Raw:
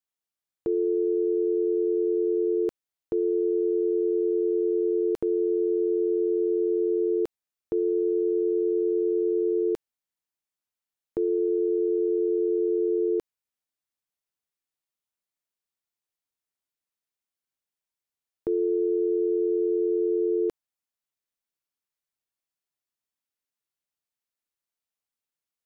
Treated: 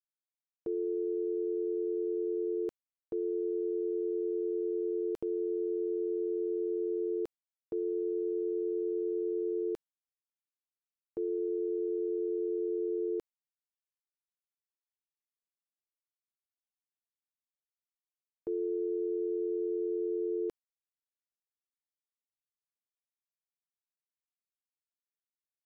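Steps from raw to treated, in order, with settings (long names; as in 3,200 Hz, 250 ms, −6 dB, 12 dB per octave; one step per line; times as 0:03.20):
noise gate with hold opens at −20 dBFS
level −8.5 dB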